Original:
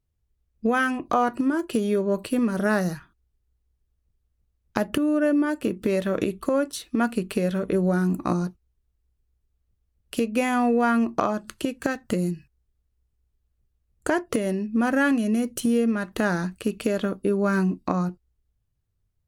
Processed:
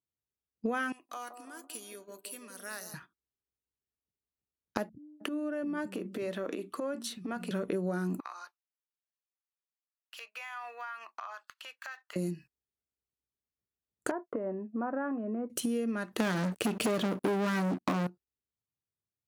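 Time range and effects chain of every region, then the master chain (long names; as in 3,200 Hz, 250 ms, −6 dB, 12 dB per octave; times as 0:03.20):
0:00.92–0:02.94: first-order pre-emphasis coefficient 0.97 + delay with a band-pass on its return 168 ms, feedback 54%, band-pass 440 Hz, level −6 dB
0:04.89–0:07.51: high-shelf EQ 6,000 Hz −5.5 dB + downward compressor 16 to 1, threshold −26 dBFS + multiband delay without the direct sound lows, highs 310 ms, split 190 Hz
0:08.20–0:12.16: high-pass filter 1,000 Hz 24 dB per octave + downward compressor 5 to 1, threshold −35 dBFS + parametric band 9,400 Hz −15 dB 1 octave
0:14.11–0:15.50: downward expander −30 dBFS + low-pass filter 1,100 Hz 24 dB per octave + spectral tilt +3.5 dB per octave
0:16.20–0:18.07: low-shelf EQ 400 Hz +5 dB + leveller curve on the samples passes 5
whole clip: high-pass filter 190 Hz 12 dB per octave; downward compressor 4 to 1, threshold −27 dBFS; noise gate −48 dBFS, range −10 dB; level −2.5 dB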